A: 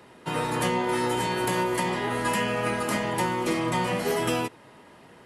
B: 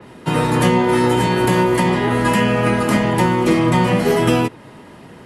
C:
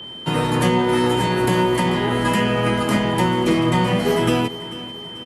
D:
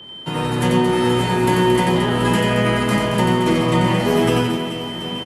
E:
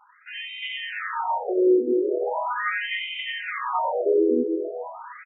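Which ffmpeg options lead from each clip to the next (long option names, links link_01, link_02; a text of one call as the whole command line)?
ffmpeg -i in.wav -filter_complex "[0:a]acrossover=split=330|1500|5500[link_01][link_02][link_03][link_04];[link_01]acontrast=75[link_05];[link_05][link_02][link_03][link_04]amix=inputs=4:normalize=0,adynamicequalizer=threshold=0.00631:dfrequency=4100:dqfactor=0.7:tfrequency=4100:tqfactor=0.7:attack=5:release=100:ratio=0.375:range=2:mode=cutabove:tftype=highshelf,volume=8dB" out.wav
ffmpeg -i in.wav -af "aecho=1:1:440|880|1320|1760|2200:0.15|0.0763|0.0389|0.0198|0.0101,aeval=exprs='val(0)+0.0316*sin(2*PI*3100*n/s)':channel_layout=same,volume=-3dB" out.wav
ffmpeg -i in.wav -filter_complex "[0:a]asplit=2[link_01][link_02];[link_02]aecho=0:1:90|225|427.5|731.2|1187:0.631|0.398|0.251|0.158|0.1[link_03];[link_01][link_03]amix=inputs=2:normalize=0,dynaudnorm=framelen=120:gausssize=9:maxgain=9dB,volume=-4dB" out.wav
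ffmpeg -i in.wav -af "asuperstop=centerf=5100:order=8:qfactor=1.1,afftfilt=real='re*between(b*sr/1024,360*pow(2800/360,0.5+0.5*sin(2*PI*0.4*pts/sr))/1.41,360*pow(2800/360,0.5+0.5*sin(2*PI*0.4*pts/sr))*1.41)':imag='im*between(b*sr/1024,360*pow(2800/360,0.5+0.5*sin(2*PI*0.4*pts/sr))/1.41,360*pow(2800/360,0.5+0.5*sin(2*PI*0.4*pts/sr))*1.41)':win_size=1024:overlap=0.75" out.wav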